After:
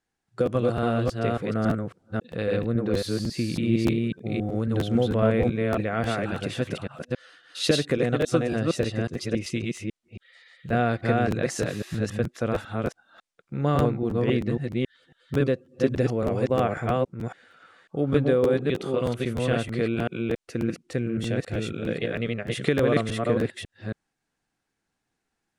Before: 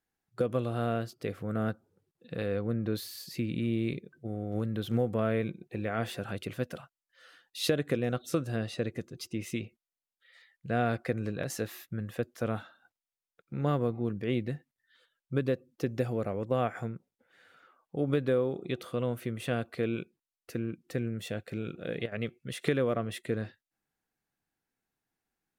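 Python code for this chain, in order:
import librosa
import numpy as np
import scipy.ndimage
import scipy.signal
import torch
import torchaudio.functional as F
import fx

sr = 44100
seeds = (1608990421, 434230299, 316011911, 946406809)

y = fx.reverse_delay(x, sr, ms=275, wet_db=-1)
y = scipy.signal.sosfilt(scipy.signal.butter(4, 9500.0, 'lowpass', fs=sr, output='sos'), y)
y = fx.buffer_crackle(y, sr, first_s=0.45, period_s=0.31, block=512, kind='repeat')
y = y * 10.0 ** (5.0 / 20.0)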